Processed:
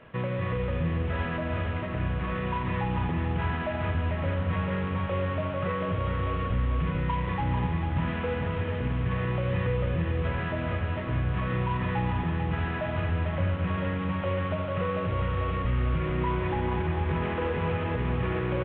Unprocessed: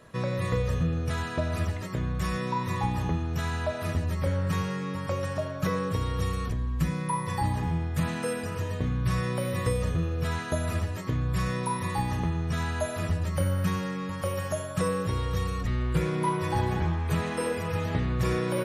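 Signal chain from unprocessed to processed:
variable-slope delta modulation 16 kbit/s
brickwall limiter −23 dBFS, peak gain reduction 7.5 dB
repeating echo 444 ms, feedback 56%, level −5.5 dB
level +1.5 dB

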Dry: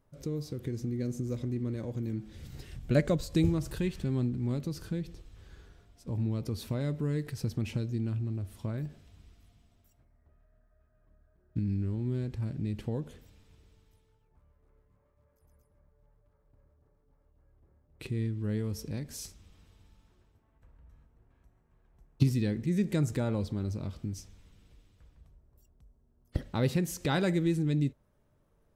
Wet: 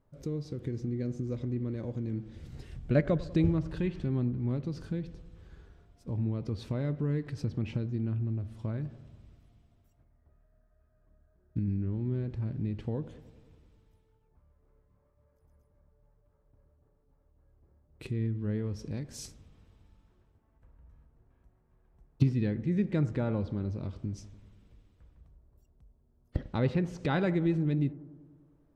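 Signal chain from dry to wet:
bucket-brigade delay 97 ms, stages 1,024, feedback 68%, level −17.5 dB
treble cut that deepens with the level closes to 2,700 Hz, closed at −27 dBFS
one half of a high-frequency compander decoder only

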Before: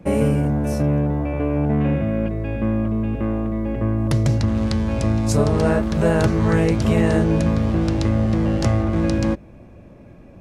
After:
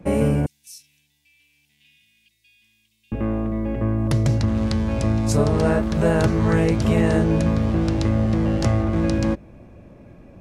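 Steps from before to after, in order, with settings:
0:00.46–0:03.12: inverse Chebyshev high-pass filter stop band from 1,400 Hz, stop band 50 dB
level −1 dB

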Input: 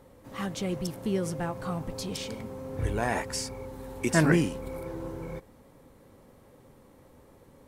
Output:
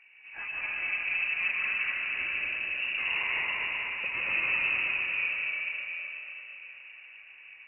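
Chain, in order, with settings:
high-pass filter 51 Hz
high-shelf EQ 2,100 Hz −12 dB
mains-hum notches 50/100/150/200 Hz
in parallel at 0 dB: brickwall limiter −23.5 dBFS, peak gain reduction 11.5 dB
on the sum: gain into a clipping stage and back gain 24.5 dB
on a send: echo with a time of its own for lows and highs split 480 Hz, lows 147 ms, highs 242 ms, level −4.5 dB
on the sum: dense smooth reverb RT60 3.8 s, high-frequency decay 0.8×, pre-delay 115 ms, DRR −5 dB
voice inversion scrambler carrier 2,800 Hz
level −8 dB

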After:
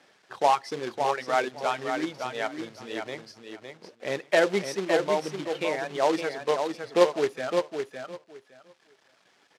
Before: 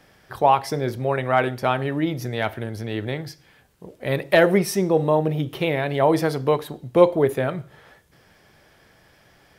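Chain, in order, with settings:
reverb reduction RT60 2 s
log-companded quantiser 4 bits
band-pass filter 280–5,700 Hz
repeating echo 561 ms, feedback 17%, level −6 dB
level −5 dB

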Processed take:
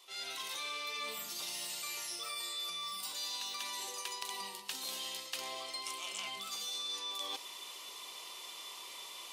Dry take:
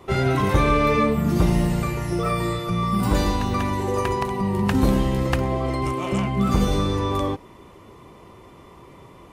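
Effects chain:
fade in at the beginning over 0.52 s
in parallel at +1 dB: brickwall limiter −17 dBFS, peak gain reduction 10 dB
on the sum: upward compression, threshold −38 dBFS
high-pass filter 1,000 Hz 12 dB per octave
high shelf with overshoot 2,500 Hz +13.5 dB, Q 1.5
reversed playback
downward compressor 6 to 1, threshold −33 dBFS, peak gain reduction 19.5 dB
reversed playback
level −6.5 dB

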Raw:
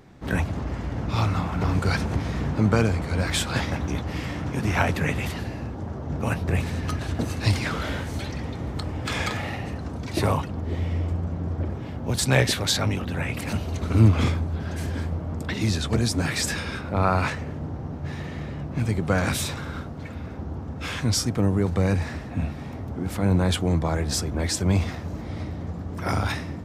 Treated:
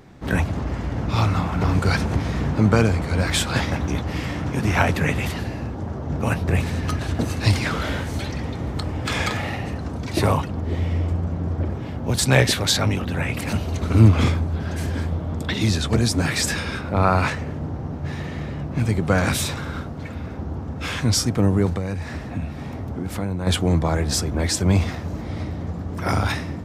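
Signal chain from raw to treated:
0:15.08–0:15.68: parametric band 3,500 Hz +7.5 dB 0.29 octaves
0:21.72–0:23.47: downward compressor 5 to 1, threshold −27 dBFS, peak gain reduction 10.5 dB
level +3.5 dB

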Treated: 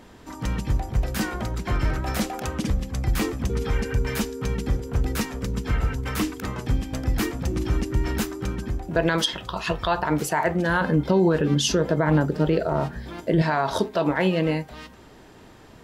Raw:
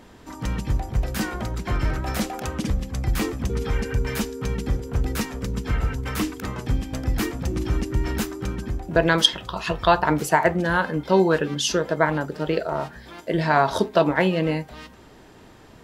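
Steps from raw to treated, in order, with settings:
0:10.81–0:13.42: low-shelf EQ 420 Hz +10.5 dB
brickwall limiter −11 dBFS, peak gain reduction 9.5 dB

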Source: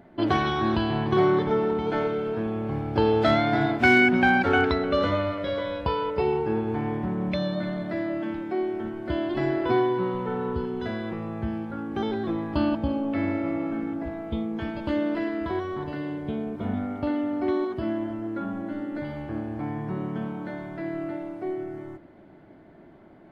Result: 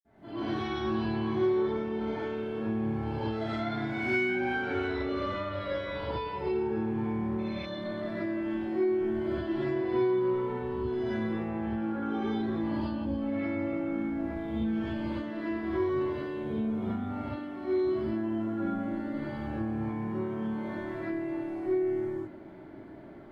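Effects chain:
0:11.19–0:12.00: bass and treble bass −9 dB, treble −9 dB
downward compressor 6 to 1, threshold −33 dBFS, peak gain reduction 17 dB
convolution reverb, pre-delay 47 ms, DRR −60 dB
level +8.5 dB

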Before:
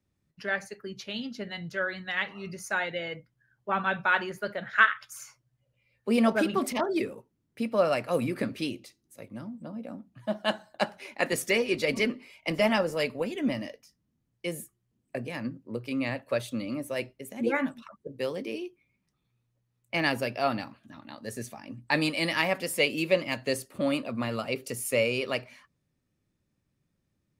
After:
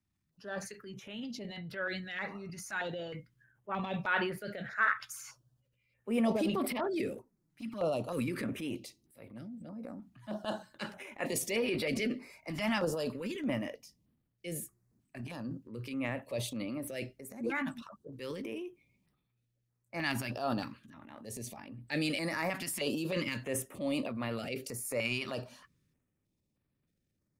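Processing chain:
transient designer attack −5 dB, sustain +8 dB
0:07.16–0:08.09: flanger swept by the level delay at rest 7.2 ms, full sweep at −26 dBFS
notch on a step sequencer 3.2 Hz 490–6,500 Hz
level −5 dB

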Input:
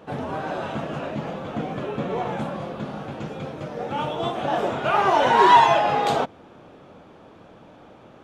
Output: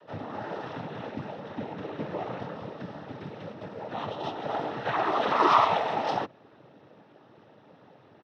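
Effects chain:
downsampling to 11,025 Hz
cochlear-implant simulation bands 12
level −7 dB

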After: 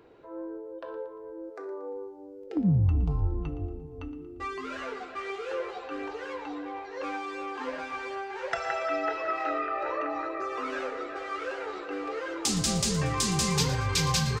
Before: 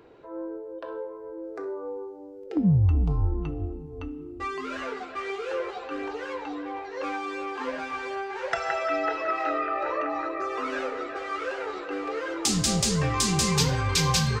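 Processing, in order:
0:01.49–0:01.92: high-pass filter 490 Hz → 200 Hz
repeating echo 116 ms, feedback 42%, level −14.5 dB
level −3 dB

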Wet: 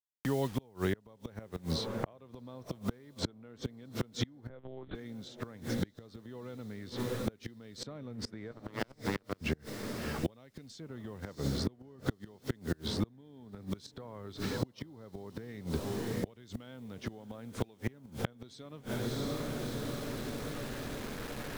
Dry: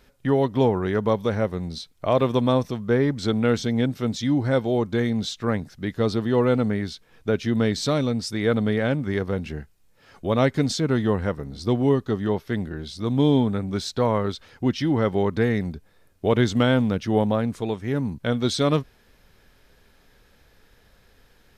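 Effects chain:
fade in at the beginning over 1.72 s
0:14.79–0:15.49: high-shelf EQ 2,300 Hz −12 dB
in parallel at −2 dB: brickwall limiter −13.5 dBFS, peak gain reduction 5 dB
on the sum: downward compressor 16 to 1, threshold −18 dBFS, peak gain reduction 9 dB
0:08.51–0:09.41: power curve on the samples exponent 3
feedback delay with all-pass diffusion 669 ms, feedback 59%, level −16 dB
bit reduction 8 bits
gate with flip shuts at −16 dBFS, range −33 dB
0:04.49–0:04.95: one-pitch LPC vocoder at 8 kHz 130 Hz
multiband upward and downward compressor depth 70%

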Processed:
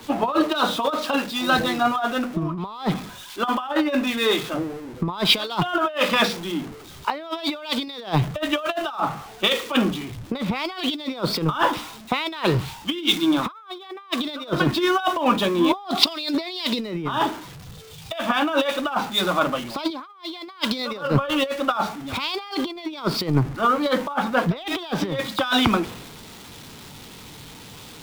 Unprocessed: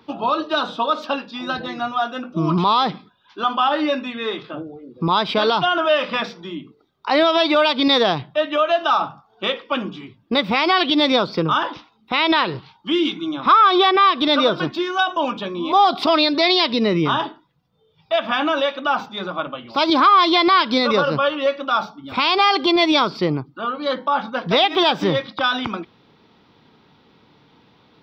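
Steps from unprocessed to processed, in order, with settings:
converter with a step at zero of −31 dBFS
compressor whose output falls as the input rises −21 dBFS, ratio −0.5
multiband upward and downward expander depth 100%
level −1 dB

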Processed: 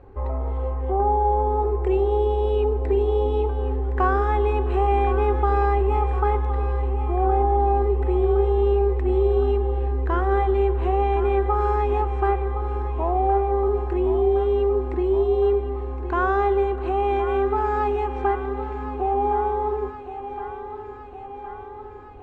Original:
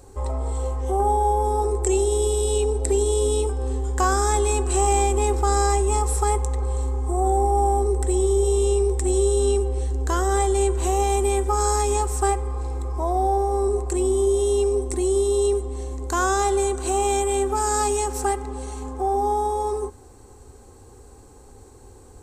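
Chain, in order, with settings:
low-pass filter 2,500 Hz 24 dB per octave
feedback echo with a high-pass in the loop 1,065 ms, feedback 69%, high-pass 250 Hz, level −11 dB

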